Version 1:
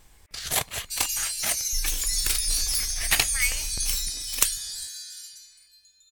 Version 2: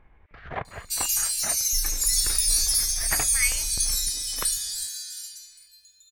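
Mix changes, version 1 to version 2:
first sound: add low-pass filter 1,800 Hz 24 dB per octave
second sound: add high-shelf EQ 7,300 Hz +8 dB

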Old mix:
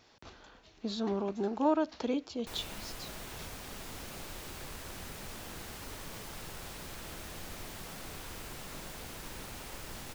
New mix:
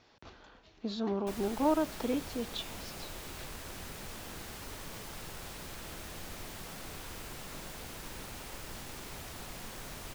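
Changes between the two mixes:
speech: add high-frequency loss of the air 77 metres
background: entry −1.20 s

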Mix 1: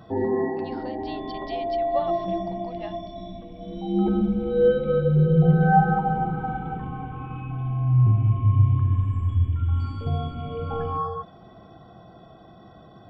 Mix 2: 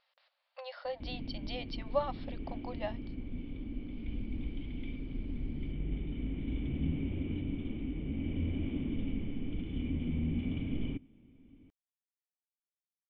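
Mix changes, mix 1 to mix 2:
first sound: muted
second sound +4.5 dB

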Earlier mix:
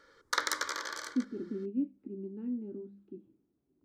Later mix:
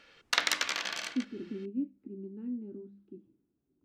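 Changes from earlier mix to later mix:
background: remove phaser with its sweep stopped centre 720 Hz, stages 6
master: add parametric band 640 Hz −4 dB 1.9 octaves

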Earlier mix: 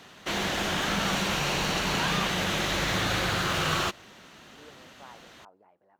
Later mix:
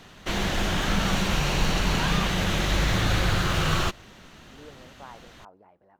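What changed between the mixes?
speech +4.0 dB
master: remove high-pass filter 250 Hz 6 dB per octave

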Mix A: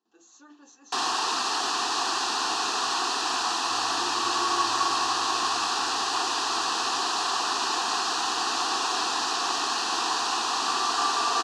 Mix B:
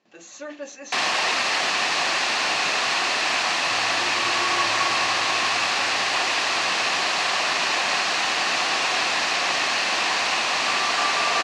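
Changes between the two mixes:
speech +10.5 dB
master: remove phaser with its sweep stopped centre 580 Hz, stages 6

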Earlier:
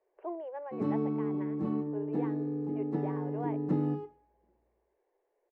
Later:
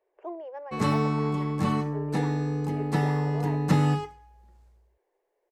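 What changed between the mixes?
speech: remove high-frequency loss of the air 330 metres
background: remove resonant band-pass 320 Hz, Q 2.2

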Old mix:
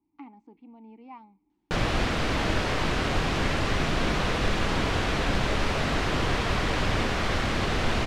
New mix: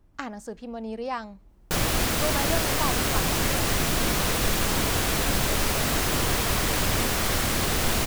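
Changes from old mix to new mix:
speech: remove formant filter u
master: remove low-pass filter 3,500 Hz 12 dB per octave

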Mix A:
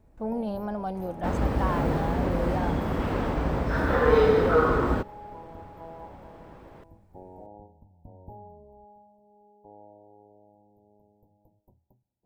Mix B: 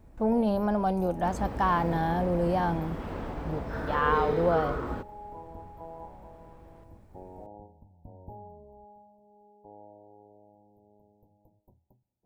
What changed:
speech +5.5 dB
second sound −9.5 dB

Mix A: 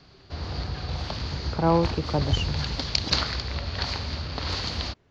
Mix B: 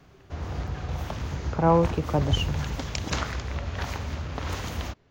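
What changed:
background: remove low-pass with resonance 4,500 Hz, resonance Q 7.9
reverb: on, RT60 0.35 s

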